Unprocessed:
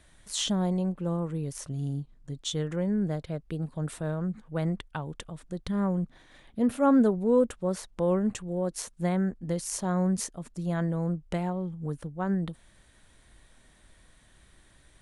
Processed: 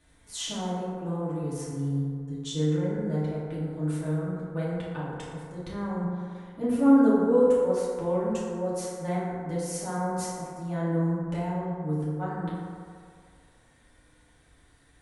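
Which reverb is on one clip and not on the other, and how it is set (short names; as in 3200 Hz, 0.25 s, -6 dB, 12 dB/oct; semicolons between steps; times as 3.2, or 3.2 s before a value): FDN reverb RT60 2.2 s, low-frequency decay 0.7×, high-frequency decay 0.35×, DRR -9.5 dB; gain -9.5 dB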